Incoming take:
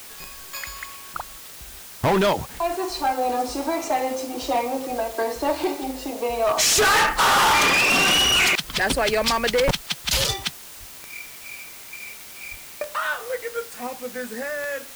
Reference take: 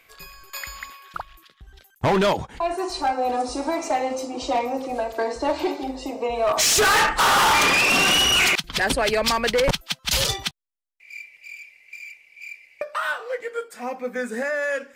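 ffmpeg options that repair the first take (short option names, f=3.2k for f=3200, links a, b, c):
-filter_complex "[0:a]adeclick=t=4,asplit=3[a][b][c];[a]afade=t=out:st=10.79:d=0.02[d];[b]highpass=f=140:w=0.5412,highpass=f=140:w=1.3066,afade=t=in:st=10.79:d=0.02,afade=t=out:st=10.91:d=0.02[e];[c]afade=t=in:st=10.91:d=0.02[f];[d][e][f]amix=inputs=3:normalize=0,asplit=3[g][h][i];[g]afade=t=out:st=12.5:d=0.02[j];[h]highpass=f=140:w=0.5412,highpass=f=140:w=1.3066,afade=t=in:st=12.5:d=0.02,afade=t=out:st=12.62:d=0.02[k];[i]afade=t=in:st=12.62:d=0.02[l];[j][k][l]amix=inputs=3:normalize=0,afwtdn=0.0089,asetnsamples=n=441:p=0,asendcmd='13.87 volume volume 4dB',volume=0dB"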